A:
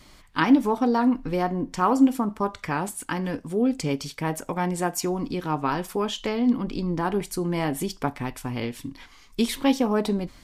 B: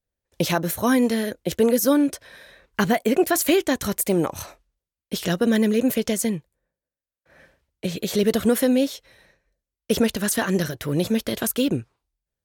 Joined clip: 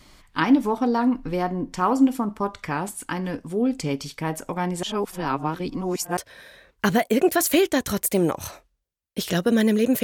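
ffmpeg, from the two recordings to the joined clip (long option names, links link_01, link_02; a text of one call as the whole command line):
ffmpeg -i cue0.wav -i cue1.wav -filter_complex "[0:a]apad=whole_dur=10.03,atrim=end=10.03,asplit=2[link_01][link_02];[link_01]atrim=end=4.832[link_03];[link_02]atrim=start=4.828:end=6.172,asetpts=PTS-STARTPTS,areverse[link_04];[1:a]atrim=start=2.118:end=5.98[link_05];[link_03][link_04]acrossfade=duration=0.004:curve1=hsin:curve2=hsin[link_06];[link_06][link_05]acrossfade=duration=0.004:curve1=hsin:curve2=hsin" out.wav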